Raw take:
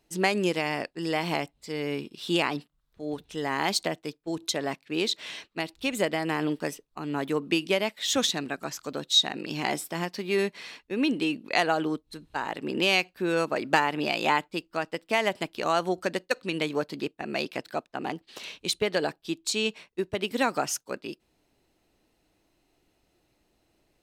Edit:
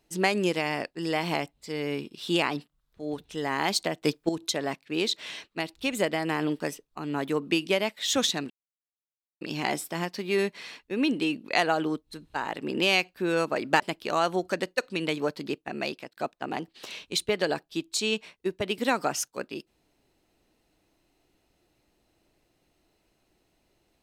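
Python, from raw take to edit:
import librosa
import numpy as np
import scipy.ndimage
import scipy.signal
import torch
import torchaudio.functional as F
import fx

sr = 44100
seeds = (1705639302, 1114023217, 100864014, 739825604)

y = fx.edit(x, sr, fx.clip_gain(start_s=4.02, length_s=0.27, db=10.0),
    fx.silence(start_s=8.5, length_s=0.91),
    fx.cut(start_s=13.8, length_s=1.53),
    fx.fade_out_span(start_s=17.2, length_s=0.5, curve='qsin'), tone=tone)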